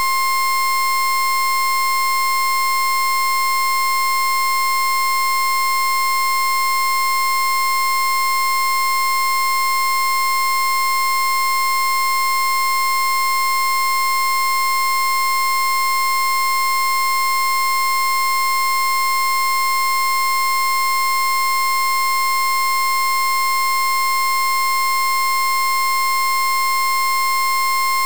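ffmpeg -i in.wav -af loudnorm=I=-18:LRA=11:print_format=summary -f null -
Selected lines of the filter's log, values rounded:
Input Integrated:    -16.6 LUFS
Input True Peak:     -15.1 dBTP
Input LRA:             0.0 LU
Input Threshold:     -26.6 LUFS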